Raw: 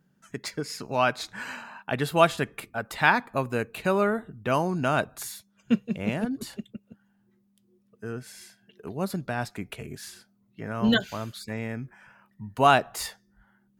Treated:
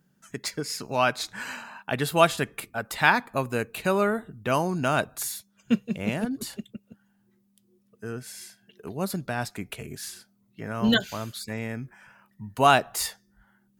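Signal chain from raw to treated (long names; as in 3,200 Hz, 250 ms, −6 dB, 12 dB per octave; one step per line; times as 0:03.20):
high-shelf EQ 4,500 Hz +7 dB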